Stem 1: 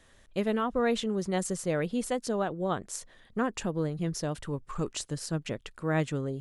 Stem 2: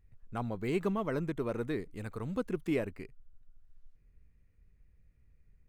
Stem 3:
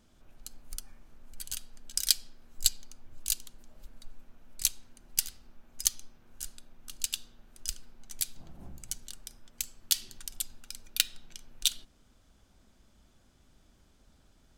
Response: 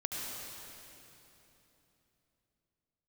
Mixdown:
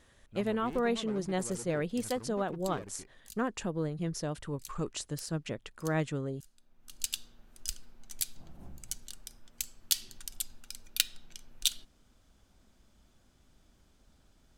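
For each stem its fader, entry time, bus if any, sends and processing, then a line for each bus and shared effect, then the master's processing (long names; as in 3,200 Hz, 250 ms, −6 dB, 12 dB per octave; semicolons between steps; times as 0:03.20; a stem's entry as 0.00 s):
−3.0 dB, 0.00 s, no send, no processing
−5.5 dB, 0.00 s, no send, tube saturation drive 35 dB, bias 0.65
−1.5 dB, 0.00 s, no send, automatic ducking −19 dB, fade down 0.20 s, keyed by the first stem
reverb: not used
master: no processing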